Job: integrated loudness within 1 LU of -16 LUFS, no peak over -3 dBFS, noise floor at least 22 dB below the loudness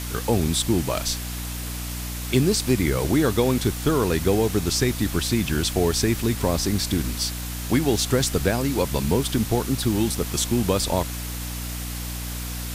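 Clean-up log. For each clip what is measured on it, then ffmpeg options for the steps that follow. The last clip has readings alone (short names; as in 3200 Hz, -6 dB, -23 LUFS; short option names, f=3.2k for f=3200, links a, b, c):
hum 60 Hz; harmonics up to 300 Hz; hum level -30 dBFS; noise floor -31 dBFS; noise floor target -46 dBFS; loudness -23.5 LUFS; peak -5.5 dBFS; loudness target -16.0 LUFS
-> -af "bandreject=f=60:t=h:w=6,bandreject=f=120:t=h:w=6,bandreject=f=180:t=h:w=6,bandreject=f=240:t=h:w=6,bandreject=f=300:t=h:w=6"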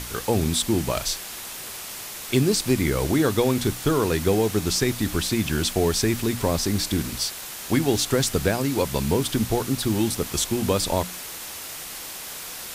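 hum none; noise floor -36 dBFS; noise floor target -46 dBFS
-> -af "afftdn=nr=10:nf=-36"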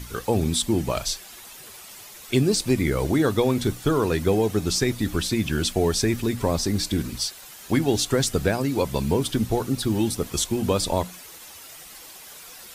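noise floor -44 dBFS; noise floor target -46 dBFS
-> -af "afftdn=nr=6:nf=-44"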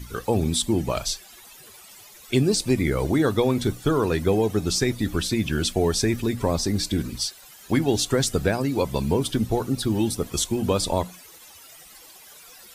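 noise floor -48 dBFS; loudness -24.0 LUFS; peak -6.5 dBFS; loudness target -16.0 LUFS
-> -af "volume=8dB,alimiter=limit=-3dB:level=0:latency=1"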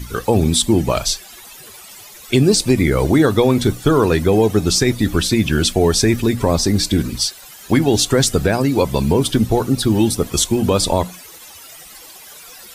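loudness -16.0 LUFS; peak -3.0 dBFS; noise floor -40 dBFS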